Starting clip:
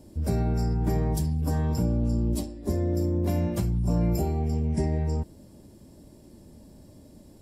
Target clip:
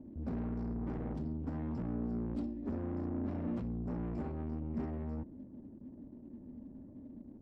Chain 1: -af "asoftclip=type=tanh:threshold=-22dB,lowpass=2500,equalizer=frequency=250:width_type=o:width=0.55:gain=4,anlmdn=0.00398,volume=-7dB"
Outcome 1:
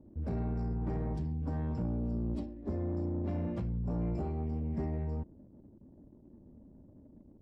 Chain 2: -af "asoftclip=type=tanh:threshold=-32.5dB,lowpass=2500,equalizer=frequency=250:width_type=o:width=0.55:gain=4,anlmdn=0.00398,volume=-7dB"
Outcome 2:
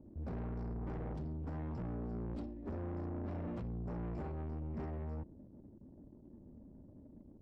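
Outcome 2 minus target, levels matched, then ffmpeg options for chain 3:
250 Hz band −3.0 dB
-af "asoftclip=type=tanh:threshold=-32.5dB,lowpass=2500,equalizer=frequency=250:width_type=o:width=0.55:gain=14,anlmdn=0.00398,volume=-7dB"

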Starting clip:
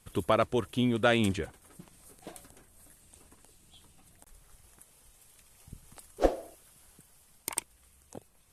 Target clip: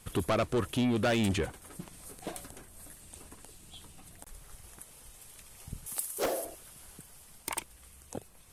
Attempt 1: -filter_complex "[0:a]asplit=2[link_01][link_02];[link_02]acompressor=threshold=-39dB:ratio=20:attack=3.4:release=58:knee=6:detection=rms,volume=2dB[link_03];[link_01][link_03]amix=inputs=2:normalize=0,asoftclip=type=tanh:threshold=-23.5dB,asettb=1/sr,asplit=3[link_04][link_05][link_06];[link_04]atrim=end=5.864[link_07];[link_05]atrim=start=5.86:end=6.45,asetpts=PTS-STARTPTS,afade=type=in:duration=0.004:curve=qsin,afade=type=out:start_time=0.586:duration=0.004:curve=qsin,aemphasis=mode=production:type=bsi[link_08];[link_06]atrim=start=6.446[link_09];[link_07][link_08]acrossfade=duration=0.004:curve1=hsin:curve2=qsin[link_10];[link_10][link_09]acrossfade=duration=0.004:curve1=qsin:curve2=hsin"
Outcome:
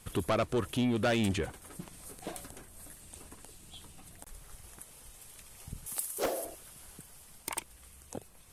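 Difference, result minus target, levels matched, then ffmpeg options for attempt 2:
downward compressor: peak gain reduction +9.5 dB
-filter_complex "[0:a]asplit=2[link_01][link_02];[link_02]acompressor=threshold=-29dB:ratio=20:attack=3.4:release=58:knee=6:detection=rms,volume=2dB[link_03];[link_01][link_03]amix=inputs=2:normalize=0,asoftclip=type=tanh:threshold=-23.5dB,asettb=1/sr,asplit=3[link_04][link_05][link_06];[link_04]atrim=end=5.864[link_07];[link_05]atrim=start=5.86:end=6.45,asetpts=PTS-STARTPTS,afade=type=in:duration=0.004:curve=qsin,afade=type=out:start_time=0.586:duration=0.004:curve=qsin,aemphasis=mode=production:type=bsi[link_08];[link_06]atrim=start=6.446[link_09];[link_07][link_08]acrossfade=duration=0.004:curve1=hsin:curve2=qsin[link_10];[link_10][link_09]acrossfade=duration=0.004:curve1=qsin:curve2=hsin"

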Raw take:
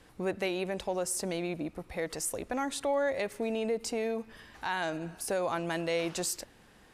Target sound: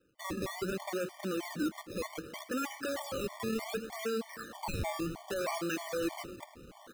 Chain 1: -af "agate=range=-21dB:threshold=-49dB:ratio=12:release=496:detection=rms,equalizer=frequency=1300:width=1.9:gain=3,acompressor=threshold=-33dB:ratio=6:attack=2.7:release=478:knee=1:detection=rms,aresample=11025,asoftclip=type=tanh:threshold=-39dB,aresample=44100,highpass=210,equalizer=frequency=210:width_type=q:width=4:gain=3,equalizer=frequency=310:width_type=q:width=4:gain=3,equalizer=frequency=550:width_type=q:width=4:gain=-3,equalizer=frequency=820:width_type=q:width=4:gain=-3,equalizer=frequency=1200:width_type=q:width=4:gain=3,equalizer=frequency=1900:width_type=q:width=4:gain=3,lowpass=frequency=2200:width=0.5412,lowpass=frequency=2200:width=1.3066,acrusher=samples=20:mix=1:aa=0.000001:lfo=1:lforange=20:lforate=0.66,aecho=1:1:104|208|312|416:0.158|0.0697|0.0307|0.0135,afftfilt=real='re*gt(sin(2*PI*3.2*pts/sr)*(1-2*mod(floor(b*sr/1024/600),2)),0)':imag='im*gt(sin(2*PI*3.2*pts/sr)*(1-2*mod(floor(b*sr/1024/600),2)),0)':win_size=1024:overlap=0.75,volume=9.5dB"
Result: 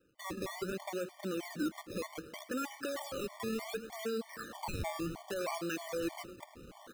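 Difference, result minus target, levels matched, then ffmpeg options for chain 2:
downward compressor: peak gain reduction +10 dB
-af "agate=range=-21dB:threshold=-49dB:ratio=12:release=496:detection=rms,equalizer=frequency=1300:width=1.9:gain=3,aresample=11025,asoftclip=type=tanh:threshold=-39dB,aresample=44100,highpass=210,equalizer=frequency=210:width_type=q:width=4:gain=3,equalizer=frequency=310:width_type=q:width=4:gain=3,equalizer=frequency=550:width_type=q:width=4:gain=-3,equalizer=frequency=820:width_type=q:width=4:gain=-3,equalizer=frequency=1200:width_type=q:width=4:gain=3,equalizer=frequency=1900:width_type=q:width=4:gain=3,lowpass=frequency=2200:width=0.5412,lowpass=frequency=2200:width=1.3066,acrusher=samples=20:mix=1:aa=0.000001:lfo=1:lforange=20:lforate=0.66,aecho=1:1:104|208|312|416:0.158|0.0697|0.0307|0.0135,afftfilt=real='re*gt(sin(2*PI*3.2*pts/sr)*(1-2*mod(floor(b*sr/1024/600),2)),0)':imag='im*gt(sin(2*PI*3.2*pts/sr)*(1-2*mod(floor(b*sr/1024/600),2)),0)':win_size=1024:overlap=0.75,volume=9.5dB"

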